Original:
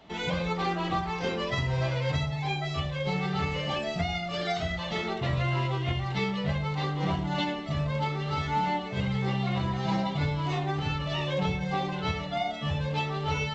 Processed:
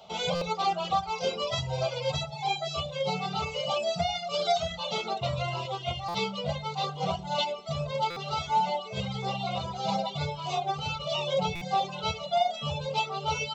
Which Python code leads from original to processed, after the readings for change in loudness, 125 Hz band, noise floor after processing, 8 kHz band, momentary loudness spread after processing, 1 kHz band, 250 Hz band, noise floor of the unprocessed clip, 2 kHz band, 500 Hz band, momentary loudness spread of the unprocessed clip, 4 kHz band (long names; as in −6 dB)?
−0.5 dB, −7.5 dB, −40 dBFS, can't be measured, 5 LU, +3.0 dB, −7.5 dB, −35 dBFS, −4.0 dB, +2.5 dB, 3 LU, +3.5 dB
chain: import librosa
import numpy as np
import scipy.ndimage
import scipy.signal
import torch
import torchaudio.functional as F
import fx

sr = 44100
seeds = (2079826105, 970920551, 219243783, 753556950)

y = fx.dereverb_blind(x, sr, rt60_s=1.3)
y = fx.highpass(y, sr, hz=360.0, slope=6)
y = fx.peak_eq(y, sr, hz=1000.0, db=-8.5, octaves=0.26)
y = fx.fixed_phaser(y, sr, hz=740.0, stages=4)
y = fx.buffer_glitch(y, sr, at_s=(0.35, 6.08, 8.1, 11.55), block=256, repeats=10)
y = y * librosa.db_to_amplitude(8.5)